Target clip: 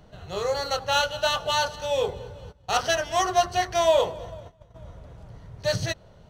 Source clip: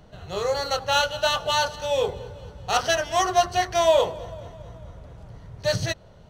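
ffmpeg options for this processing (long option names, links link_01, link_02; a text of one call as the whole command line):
ffmpeg -i in.wav -filter_complex "[0:a]asplit=3[link_01][link_02][link_03];[link_01]afade=type=out:start_time=2.51:duration=0.02[link_04];[link_02]agate=range=-16dB:threshold=-37dB:ratio=16:detection=peak,afade=type=in:start_time=2.51:duration=0.02,afade=type=out:start_time=4.74:duration=0.02[link_05];[link_03]afade=type=in:start_time=4.74:duration=0.02[link_06];[link_04][link_05][link_06]amix=inputs=3:normalize=0,volume=-1.5dB" out.wav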